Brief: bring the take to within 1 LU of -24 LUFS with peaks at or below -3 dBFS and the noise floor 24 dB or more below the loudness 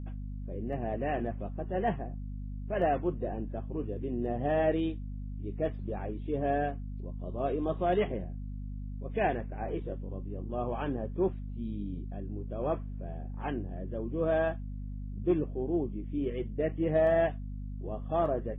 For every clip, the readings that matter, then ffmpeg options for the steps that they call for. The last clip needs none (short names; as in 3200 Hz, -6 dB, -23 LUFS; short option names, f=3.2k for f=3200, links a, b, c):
hum 50 Hz; harmonics up to 250 Hz; hum level -36 dBFS; loudness -33.5 LUFS; peak -16.0 dBFS; loudness target -24.0 LUFS
-> -af "bandreject=f=50:t=h:w=4,bandreject=f=100:t=h:w=4,bandreject=f=150:t=h:w=4,bandreject=f=200:t=h:w=4,bandreject=f=250:t=h:w=4"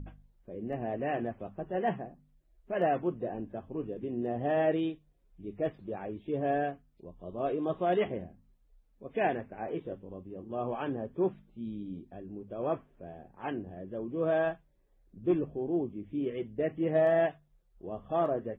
hum none; loudness -33.5 LUFS; peak -16.5 dBFS; loudness target -24.0 LUFS
-> -af "volume=9.5dB"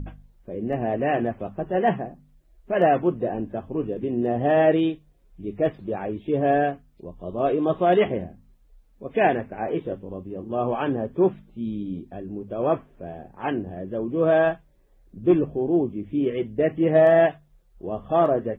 loudness -24.0 LUFS; peak -7.0 dBFS; noise floor -58 dBFS